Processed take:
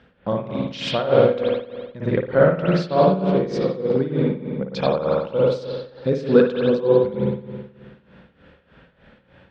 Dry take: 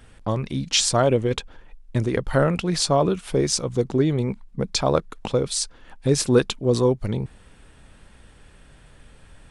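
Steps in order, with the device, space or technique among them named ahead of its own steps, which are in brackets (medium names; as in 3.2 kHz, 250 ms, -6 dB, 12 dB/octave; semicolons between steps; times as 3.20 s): combo amplifier with spring reverb and tremolo (spring tank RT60 1.5 s, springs 53 ms, chirp 40 ms, DRR -3.5 dB; tremolo 3.3 Hz, depth 80%; cabinet simulation 82–4300 Hz, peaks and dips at 110 Hz -5 dB, 190 Hz +9 dB, 530 Hz +9 dB, 1.5 kHz +4 dB); trim -2.5 dB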